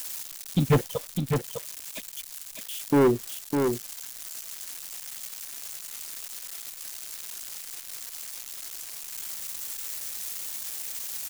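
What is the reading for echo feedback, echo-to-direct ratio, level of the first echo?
no regular repeats, -5.5 dB, -5.5 dB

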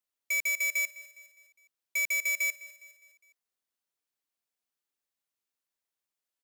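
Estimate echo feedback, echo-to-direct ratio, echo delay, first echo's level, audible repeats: 50%, -17.0 dB, 205 ms, -18.0 dB, 3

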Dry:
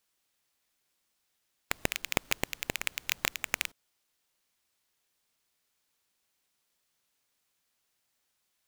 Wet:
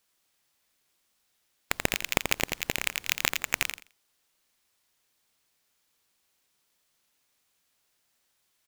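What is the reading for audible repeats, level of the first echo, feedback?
2, -6.5 dB, 18%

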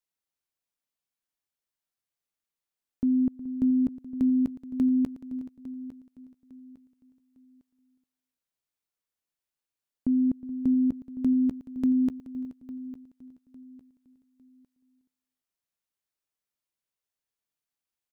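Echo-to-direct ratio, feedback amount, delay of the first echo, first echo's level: -11.0 dB, no regular repeats, 364 ms, -16.5 dB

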